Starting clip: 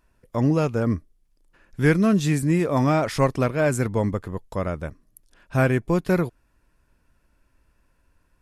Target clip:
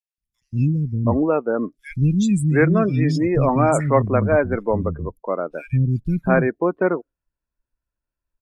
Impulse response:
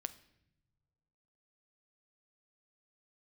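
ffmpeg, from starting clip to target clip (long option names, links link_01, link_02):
-filter_complex "[0:a]acrossover=split=240|2600[link_01][link_02][link_03];[link_01]adelay=180[link_04];[link_02]adelay=720[link_05];[link_04][link_05][link_03]amix=inputs=3:normalize=0,acontrast=36,afftdn=noise_reduction=27:noise_floor=-28"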